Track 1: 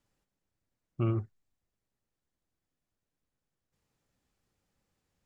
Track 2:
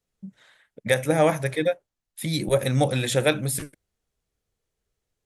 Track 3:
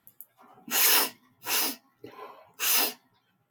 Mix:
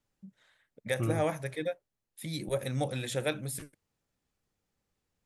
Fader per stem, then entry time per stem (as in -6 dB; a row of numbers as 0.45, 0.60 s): -3.0 dB, -10.5 dB, off; 0.00 s, 0.00 s, off